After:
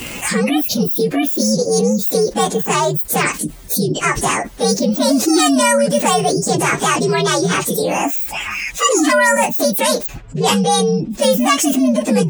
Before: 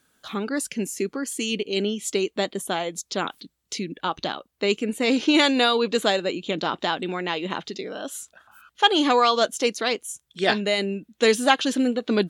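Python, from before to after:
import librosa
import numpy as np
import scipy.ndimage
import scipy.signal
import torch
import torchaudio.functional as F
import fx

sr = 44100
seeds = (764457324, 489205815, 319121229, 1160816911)

y = fx.partial_stretch(x, sr, pct=130)
y = fx.env_lowpass(y, sr, base_hz=1300.0, full_db=-21.5, at=(10.06, 11.09), fade=0.02)
y = fx.env_flatten(y, sr, amount_pct=70)
y = y * 10.0 ** (5.0 / 20.0)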